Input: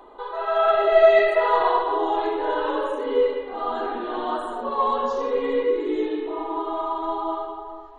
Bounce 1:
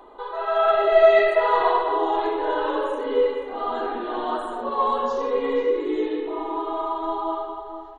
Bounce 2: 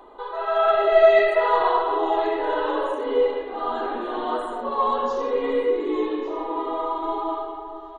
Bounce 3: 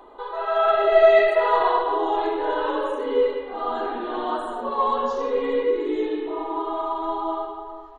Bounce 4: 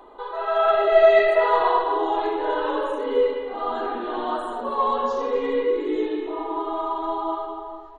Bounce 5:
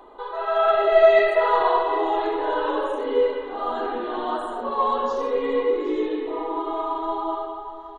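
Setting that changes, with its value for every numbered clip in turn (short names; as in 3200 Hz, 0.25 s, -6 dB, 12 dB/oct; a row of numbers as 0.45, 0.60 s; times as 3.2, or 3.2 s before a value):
echo, time: 0.485, 1.154, 0.105, 0.252, 0.77 s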